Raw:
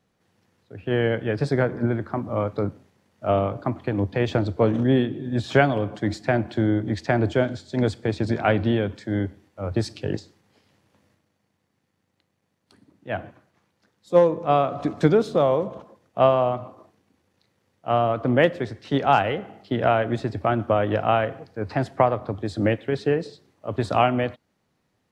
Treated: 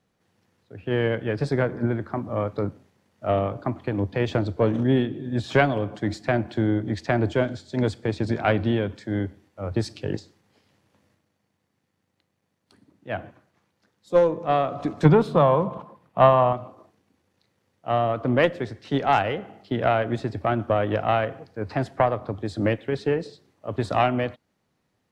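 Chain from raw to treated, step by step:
harmonic generator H 2 −14 dB, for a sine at −3.5 dBFS
0:15.05–0:16.53: graphic EQ with 15 bands 160 Hz +11 dB, 1,000 Hz +10 dB, 2,500 Hz +3 dB, 6,300 Hz −7 dB
level −1.5 dB

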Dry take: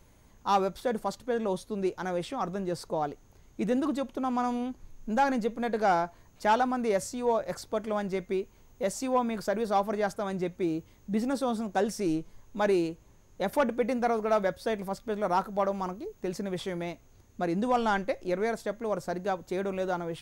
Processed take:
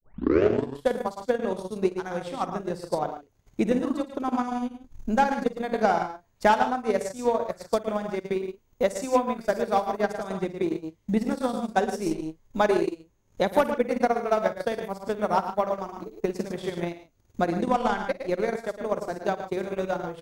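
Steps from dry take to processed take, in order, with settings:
turntable start at the beginning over 0.87 s
loudspeakers that aren't time-aligned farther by 18 metres −7 dB, 38 metres −5 dB, 51 metres −8 dB
transient designer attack +11 dB, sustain −12 dB
level −2 dB

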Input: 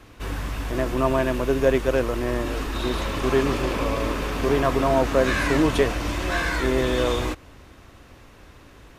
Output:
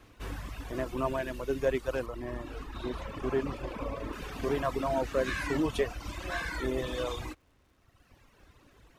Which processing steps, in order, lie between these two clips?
reverb reduction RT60 1.7 s
0:02.06–0:04.13: high-shelf EQ 2,700 Hz −9.5 dB
surface crackle 190 per second −54 dBFS
level −8 dB

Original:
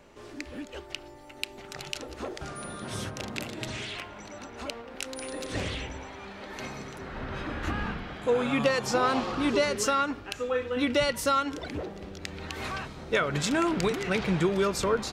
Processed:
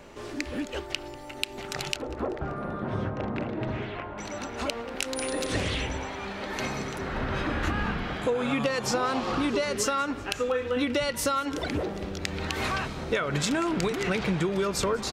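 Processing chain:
0:01.96–0:04.18: low-pass filter 1,300 Hz 12 dB per octave
downward compressor 6 to 1, threshold −31 dBFS, peak gain reduction 11 dB
repeating echo 193 ms, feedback 55%, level −22.5 dB
level +7 dB

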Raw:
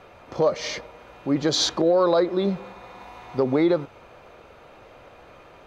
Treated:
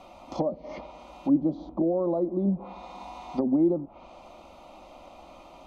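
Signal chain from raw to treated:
phaser with its sweep stopped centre 440 Hz, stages 6
treble cut that deepens with the level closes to 390 Hz, closed at −24.5 dBFS
healed spectral selection 0:00.50–0:00.74, 1,900–4,900 Hz both
level +3 dB

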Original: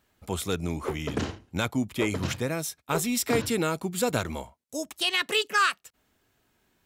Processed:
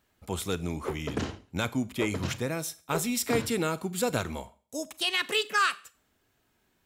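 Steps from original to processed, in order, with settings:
four-comb reverb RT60 0.42 s, combs from 30 ms, DRR 17 dB
level −2 dB

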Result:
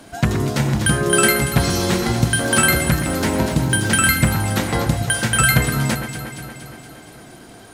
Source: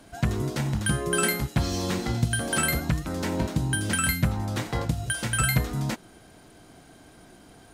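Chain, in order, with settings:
low-shelf EQ 71 Hz −9 dB
delay that swaps between a low-pass and a high-pass 117 ms, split 2,400 Hz, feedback 79%, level −8 dB
0:02.42–0:04.50: surface crackle 190 per second −37 dBFS
level +9 dB

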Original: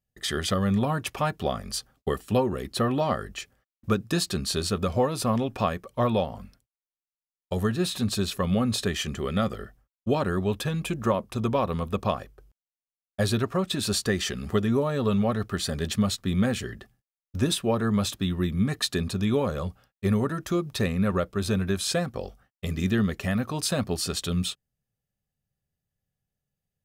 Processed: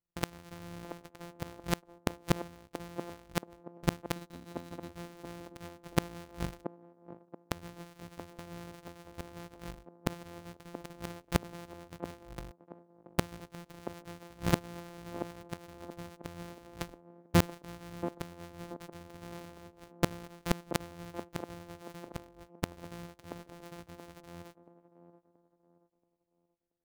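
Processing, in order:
samples sorted by size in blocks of 256 samples
noise gate with hold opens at −49 dBFS
0:04.16–0:04.89: hollow resonant body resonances 260/3,900 Hz, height 14 dB
gate with flip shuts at −23 dBFS, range −32 dB
delay with a band-pass on its return 679 ms, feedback 33%, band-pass 460 Hz, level −7.5 dB
level +9.5 dB

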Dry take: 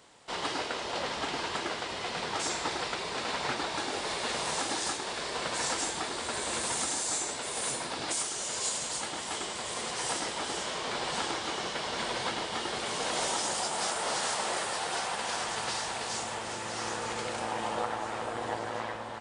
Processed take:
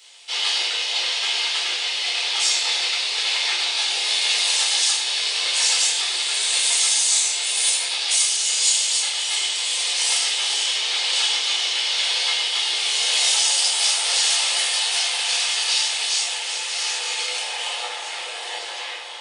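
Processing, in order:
Bessel high-pass filter 710 Hz, order 8
high shelf with overshoot 1,900 Hz +13 dB, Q 1.5
notch filter 7,300 Hz, Q 24
rectangular room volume 500 cubic metres, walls furnished, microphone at 4.1 metres
level −4 dB

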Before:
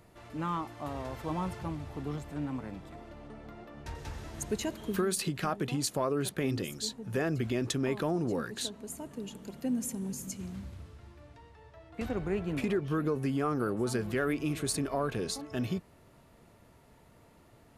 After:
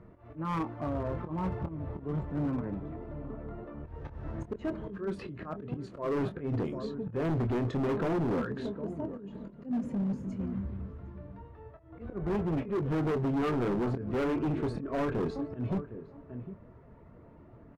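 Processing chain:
spectral magnitudes quantised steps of 15 dB
low-pass filter 1,100 Hz 12 dB per octave
parametric band 790 Hz −6.5 dB 0.34 octaves
slap from a distant wall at 130 metres, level −16 dB
volume swells 210 ms
double-tracking delay 25 ms −9 dB
hard clipping −33.5 dBFS, distortion −8 dB
level +6.5 dB

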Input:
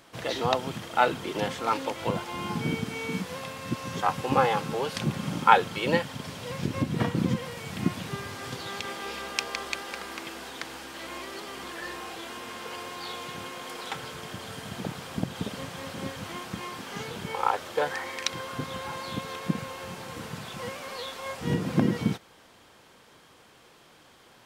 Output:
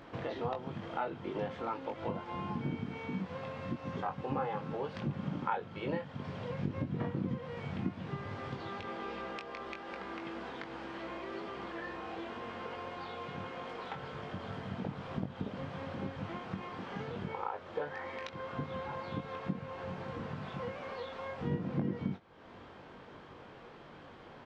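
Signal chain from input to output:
downward compressor 2.5 to 1, threshold −46 dBFS, peak gain reduction 22 dB
head-to-tape spacing loss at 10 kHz 36 dB
double-tracking delay 21 ms −6 dB
level +6.5 dB

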